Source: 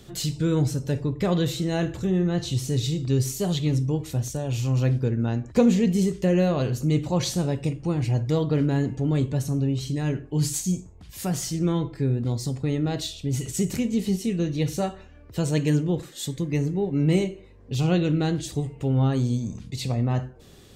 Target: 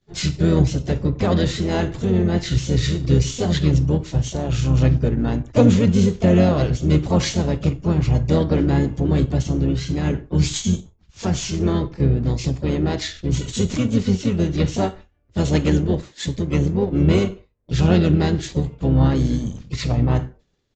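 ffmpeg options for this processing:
-filter_complex "[0:a]agate=range=0.0224:threshold=0.0178:ratio=3:detection=peak,lowshelf=f=76:g=2.5,asplit=2[s0][s1];[s1]aeval=exprs='sgn(val(0))*max(abs(val(0))-0.0133,0)':c=same,volume=0.531[s2];[s0][s2]amix=inputs=2:normalize=0,asplit=4[s3][s4][s5][s6];[s4]asetrate=22050,aresample=44100,atempo=2,volume=0.631[s7];[s5]asetrate=52444,aresample=44100,atempo=0.840896,volume=0.316[s8];[s6]asetrate=55563,aresample=44100,atempo=0.793701,volume=0.282[s9];[s3][s7][s8][s9]amix=inputs=4:normalize=0,aresample=16000,aresample=44100"

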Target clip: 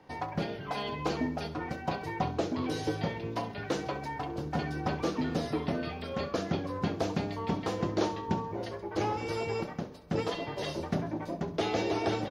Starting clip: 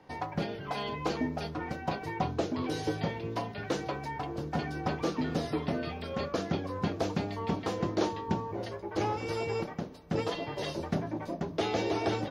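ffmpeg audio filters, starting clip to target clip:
-af "aecho=1:1:67|134|201|268:0.178|0.0782|0.0344|0.0151"

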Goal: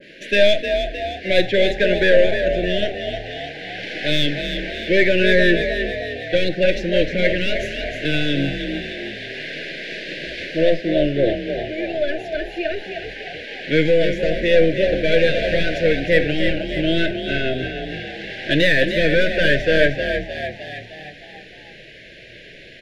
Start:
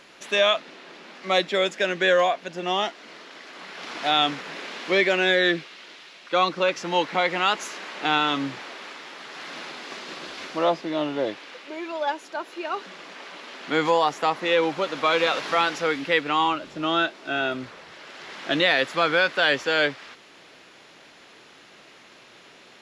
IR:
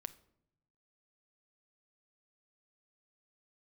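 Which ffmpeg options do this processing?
-filter_complex "[0:a]asubboost=boost=9:cutoff=72,aeval=exprs='(tanh(8.91*val(0)+0.45)-tanh(0.45))/8.91':c=same,asuperstop=centerf=1000:order=20:qfactor=1.1,asplit=7[s0][s1][s2][s3][s4][s5][s6];[s1]adelay=308,afreqshift=37,volume=0.447[s7];[s2]adelay=616,afreqshift=74,volume=0.237[s8];[s3]adelay=924,afreqshift=111,volume=0.126[s9];[s4]adelay=1232,afreqshift=148,volume=0.0668[s10];[s5]adelay=1540,afreqshift=185,volume=0.0351[s11];[s6]adelay=1848,afreqshift=222,volume=0.0186[s12];[s0][s7][s8][s9][s10][s11][s12]amix=inputs=7:normalize=0,asplit=2[s13][s14];[1:a]atrim=start_sample=2205,lowpass=3600[s15];[s14][s15]afir=irnorm=-1:irlink=0,volume=4.47[s16];[s13][s16]amix=inputs=2:normalize=0,adynamicequalizer=threshold=0.0316:dfrequency=1500:dqfactor=0.7:tfrequency=1500:tqfactor=0.7:attack=5:release=100:ratio=0.375:range=2:mode=cutabove:tftype=highshelf"

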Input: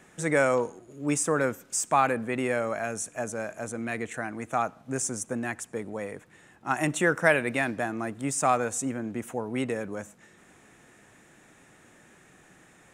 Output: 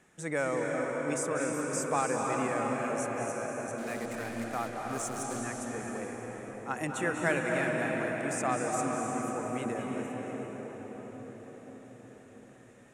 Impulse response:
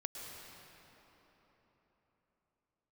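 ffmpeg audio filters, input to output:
-filter_complex "[0:a]asettb=1/sr,asplit=3[s0][s1][s2];[s0]atrim=end=3.784[s3];[s1]atrim=start=3.78:end=5.4,asetpts=PTS-STARTPTS,afade=t=in:d=0.004:c=qsin,afade=t=out:st=1.616:d=0.004:c=qsin,acrusher=bits=7:dc=4:mix=0:aa=0.000001[s4];[s2]atrim=start=5.396[s5];[s3][s4]acrossfade=d=0.004:c1=hsin:c2=qsin[s6];[s6][s5]acrossfade=d=0.004:c1=qsin:c2=hsin[s7];[1:a]atrim=start_sample=2205,asetrate=24255,aresample=44100[s8];[s7][s8]afir=irnorm=-1:irlink=0,volume=0.422"

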